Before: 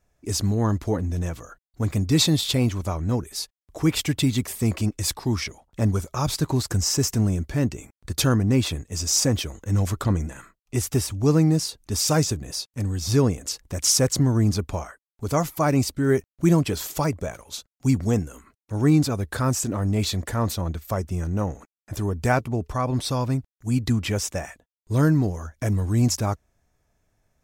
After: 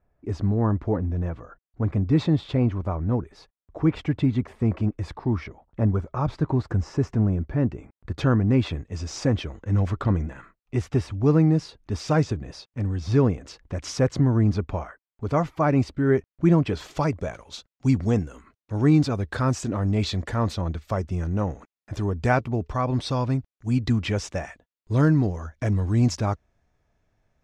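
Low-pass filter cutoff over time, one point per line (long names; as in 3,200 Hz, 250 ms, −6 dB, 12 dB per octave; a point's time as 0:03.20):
0:07.72 1,500 Hz
0:08.66 2,500 Hz
0:16.58 2,500 Hz
0:17.15 4,300 Hz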